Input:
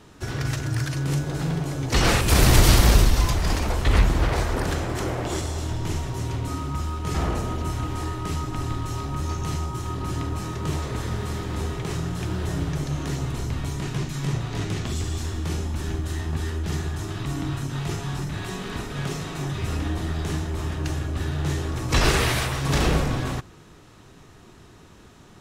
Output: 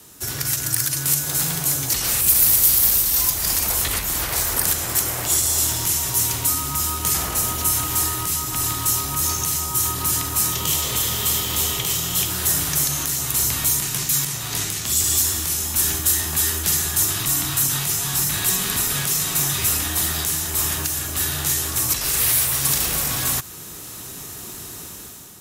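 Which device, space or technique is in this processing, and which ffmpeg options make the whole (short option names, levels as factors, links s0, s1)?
FM broadcast chain: -filter_complex "[0:a]highpass=f=64:p=1,dynaudnorm=f=180:g=7:m=3.55,acrossover=split=170|780[s0][s1][s2];[s0]acompressor=threshold=0.0355:ratio=4[s3];[s1]acompressor=threshold=0.0178:ratio=4[s4];[s2]acompressor=threshold=0.0447:ratio=4[s5];[s3][s4][s5]amix=inputs=3:normalize=0,aemphasis=mode=production:type=50fm,alimiter=limit=0.224:level=0:latency=1:release=467,asoftclip=type=hard:threshold=0.178,lowpass=f=15000:w=0.5412,lowpass=f=15000:w=1.3066,aemphasis=mode=production:type=50fm,asettb=1/sr,asplit=3[s6][s7][s8];[s6]atrim=end=10.524[s9];[s7]atrim=start=10.52:end=12.3,asetpts=PTS-STARTPTS,afade=t=in:d=0.004:c=qsin,afade=t=out:st=1.776:d=0.004:c=qsin,equalizer=f=500:t=o:w=0.33:g=3,equalizer=f=1600:t=o:w=0.33:g=-5,equalizer=f=3150:t=o:w=0.33:g=9,equalizer=f=10000:t=o:w=0.33:g=-5[s10];[s8]atrim=start=12.296[s11];[s9][s10]acrossfade=d=0.004:c1=hsin:c2=qsin[s12];[s12][s11]acrossfade=d=0.004:c1=qsin:c2=hsin,volume=0.794"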